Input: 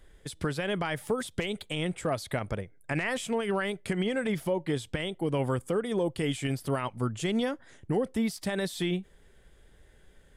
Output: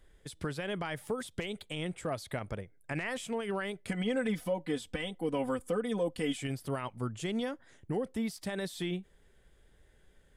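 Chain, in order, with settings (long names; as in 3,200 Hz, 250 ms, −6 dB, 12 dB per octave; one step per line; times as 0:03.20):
0:03.88–0:06.43: comb filter 4 ms, depth 79%
level −5.5 dB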